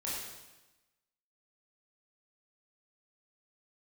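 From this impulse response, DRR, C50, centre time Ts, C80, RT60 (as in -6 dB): -7.5 dB, -0.5 dB, 78 ms, 2.0 dB, 1.1 s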